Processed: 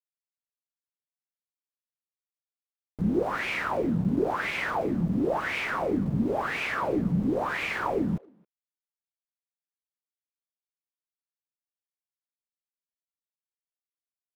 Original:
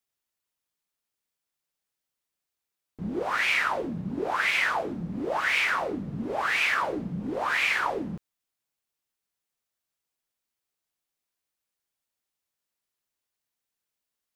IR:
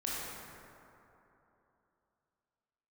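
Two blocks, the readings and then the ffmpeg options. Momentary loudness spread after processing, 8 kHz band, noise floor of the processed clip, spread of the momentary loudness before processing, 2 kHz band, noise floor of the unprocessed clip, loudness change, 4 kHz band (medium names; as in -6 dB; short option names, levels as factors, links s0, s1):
2 LU, -7.5 dB, under -85 dBFS, 10 LU, -6.0 dB, under -85 dBFS, -1.5 dB, -7.5 dB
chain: -filter_complex "[0:a]aeval=exprs='val(0)*gte(abs(val(0)),0.00944)':c=same,tiltshelf=f=780:g=8.5,asplit=2[s0][s1];[s1]adelay=270,highpass=300,lowpass=3400,asoftclip=type=hard:threshold=0.0708,volume=0.0562[s2];[s0][s2]amix=inputs=2:normalize=0"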